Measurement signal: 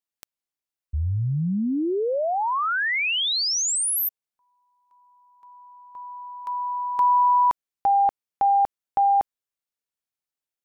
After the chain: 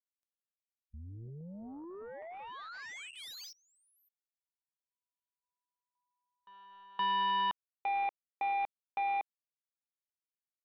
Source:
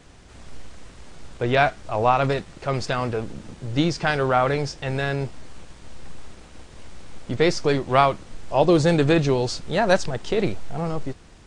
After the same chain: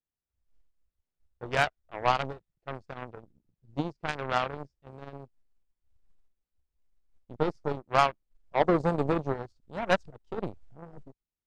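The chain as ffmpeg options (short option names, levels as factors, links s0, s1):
-af "afwtdn=0.0631,aeval=exprs='0.596*(cos(1*acos(clip(val(0)/0.596,-1,1)))-cos(1*PI/2))+0.00473*(cos(2*acos(clip(val(0)/0.596,-1,1)))-cos(2*PI/2))+0.0944*(cos(3*acos(clip(val(0)/0.596,-1,1)))-cos(3*PI/2))+0.0422*(cos(7*acos(clip(val(0)/0.596,-1,1)))-cos(7*PI/2))':c=same,volume=0.708"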